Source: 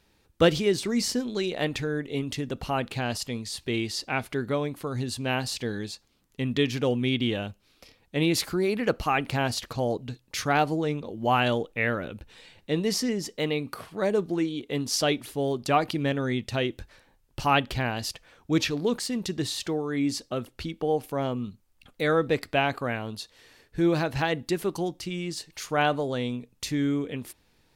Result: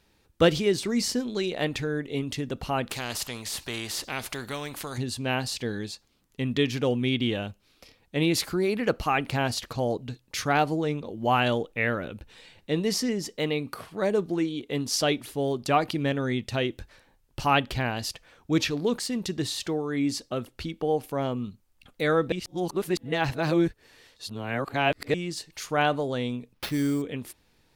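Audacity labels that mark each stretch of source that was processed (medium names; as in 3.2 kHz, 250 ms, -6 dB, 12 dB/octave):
2.890000	4.980000	spectrum-flattening compressor 2:1
22.320000	25.140000	reverse
26.530000	27.020000	sample-rate reducer 7.9 kHz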